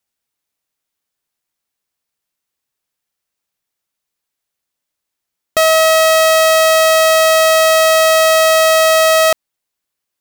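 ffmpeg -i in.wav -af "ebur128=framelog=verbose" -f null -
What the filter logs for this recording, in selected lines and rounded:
Integrated loudness:
  I:          -9.6 LUFS
  Threshold: -19.8 LUFS
Loudness range:
  LRA:         8.4 LU
  Threshold: -31.2 LUFS
  LRA low:   -17.8 LUFS
  LRA high:   -9.3 LUFS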